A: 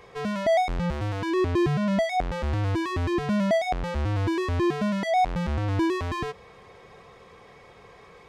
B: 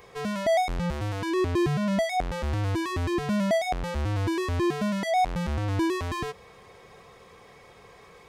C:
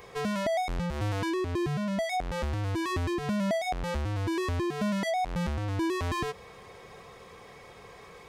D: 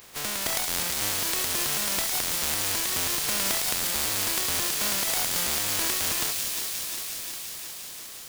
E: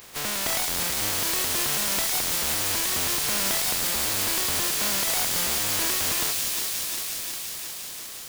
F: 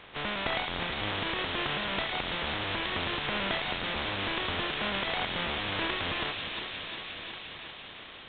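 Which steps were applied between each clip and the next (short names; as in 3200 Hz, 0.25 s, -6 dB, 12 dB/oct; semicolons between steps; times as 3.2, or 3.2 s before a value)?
high shelf 7500 Hz +12 dB; gain -1.5 dB
compressor, threshold -29 dBFS, peak gain reduction 9 dB; gain +2 dB
spectral contrast lowered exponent 0.18; thin delay 0.176 s, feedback 85%, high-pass 3300 Hz, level -3.5 dB; lo-fi delay 0.36 s, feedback 80%, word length 7-bit, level -11 dB
hard clip -22.5 dBFS, distortion -12 dB; gain +3 dB
G.726 24 kbps 8000 Hz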